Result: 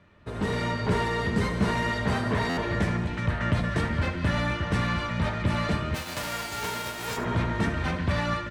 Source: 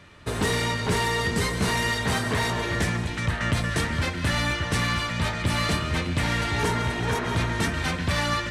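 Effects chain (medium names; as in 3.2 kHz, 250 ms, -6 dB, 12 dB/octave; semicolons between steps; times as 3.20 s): 5.94–7.16 s: formants flattened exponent 0.1; delay 74 ms -12.5 dB; level rider gain up to 7 dB; low-pass 1.5 kHz 6 dB/octave; feedback comb 200 Hz, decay 0.19 s, harmonics odd, mix 60%; buffer glitch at 2.49 s, samples 512, times 6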